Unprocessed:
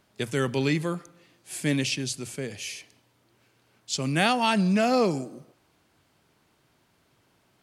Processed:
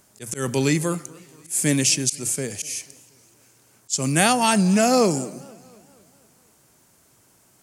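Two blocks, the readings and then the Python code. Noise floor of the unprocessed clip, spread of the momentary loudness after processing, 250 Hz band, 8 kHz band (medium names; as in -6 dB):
-67 dBFS, 14 LU, +4.5 dB, +14.0 dB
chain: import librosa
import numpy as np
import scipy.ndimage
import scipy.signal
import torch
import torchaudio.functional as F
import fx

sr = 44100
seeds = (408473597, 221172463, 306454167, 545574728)

y = fx.high_shelf_res(x, sr, hz=5200.0, db=11.0, q=1.5)
y = fx.auto_swell(y, sr, attack_ms=154.0)
y = fx.echo_warbled(y, sr, ms=240, feedback_pct=53, rate_hz=2.8, cents=174, wet_db=-23.0)
y = y * librosa.db_to_amplitude(4.5)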